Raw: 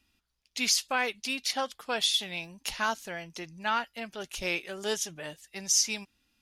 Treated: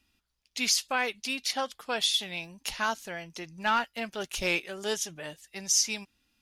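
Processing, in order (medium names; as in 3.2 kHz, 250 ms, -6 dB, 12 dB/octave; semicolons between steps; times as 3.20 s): 3.58–4.60 s: waveshaping leveller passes 1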